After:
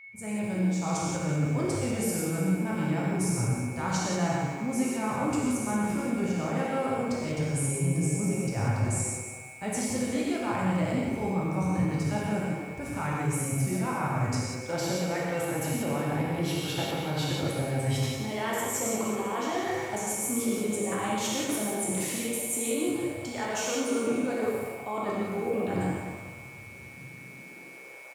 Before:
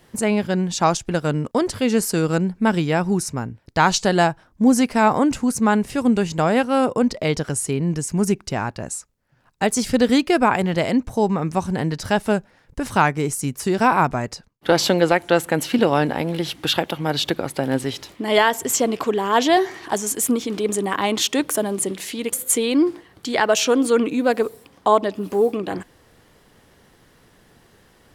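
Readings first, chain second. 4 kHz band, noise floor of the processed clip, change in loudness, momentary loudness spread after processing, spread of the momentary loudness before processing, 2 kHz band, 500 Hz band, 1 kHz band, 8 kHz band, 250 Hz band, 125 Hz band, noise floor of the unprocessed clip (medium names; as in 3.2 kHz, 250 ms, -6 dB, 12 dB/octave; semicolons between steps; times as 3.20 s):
-12.0 dB, -45 dBFS, -9.0 dB, 6 LU, 8 LU, -10.5 dB, -11.0 dB, -11.5 dB, -6.5 dB, -8.5 dB, -2.5 dB, -56 dBFS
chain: fade-in on the opening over 1.23 s; ten-band graphic EQ 125 Hz +9 dB, 250 Hz -3 dB, 4 kHz -6 dB, 8 kHz +4 dB; reverse; compression 6:1, threshold -29 dBFS, peak gain reduction 17.5 dB; reverse; whistle 2.2 kHz -44 dBFS; high-pass sweep 87 Hz -> 620 Hz, 26.72–28.03 s; on a send: frequency-shifting echo 126 ms, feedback 56%, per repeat +130 Hz, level -12.5 dB; on the sum: gated-style reverb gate 200 ms flat, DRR -4.5 dB; bit-crushed delay 195 ms, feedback 35%, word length 8-bit, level -9 dB; trim -5 dB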